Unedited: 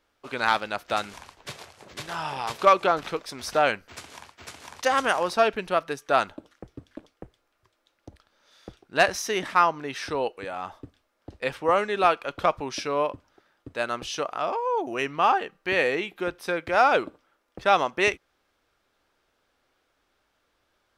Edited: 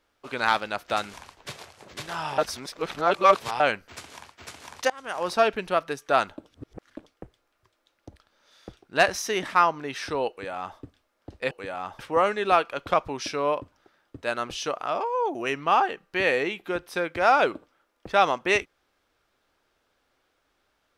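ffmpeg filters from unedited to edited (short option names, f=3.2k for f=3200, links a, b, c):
-filter_complex "[0:a]asplit=8[a][b][c][d][e][f][g][h];[a]atrim=end=2.382[i];[b]atrim=start=2.378:end=3.602,asetpts=PTS-STARTPTS,areverse[j];[c]atrim=start=3.598:end=4.9,asetpts=PTS-STARTPTS,afade=t=out:st=1.298:d=0.004:c=hsin:silence=0.0630957[k];[d]atrim=start=4.9:end=6.512,asetpts=PTS-STARTPTS,afade=t=in:d=0.39:c=qua:silence=0.0630957[l];[e]atrim=start=6.508:end=6.902,asetpts=PTS-STARTPTS,areverse[m];[f]atrim=start=6.898:end=11.512[n];[g]atrim=start=10.298:end=10.782[o];[h]atrim=start=11.508[p];[i][j]acrossfade=d=0.004:c1=hsin:c2=hsin[q];[k][l]concat=n=2:v=0:a=1[r];[q][r]acrossfade=d=0.004:c1=hsin:c2=hsin[s];[s][m]acrossfade=d=0.004:c1=hsin:c2=hsin[t];[t][n]acrossfade=d=0.004:c1=hsin:c2=hsin[u];[u][o]acrossfade=d=0.004:c1=hsin:c2=hsin[v];[v][p]acrossfade=d=0.004:c1=hsin:c2=hsin"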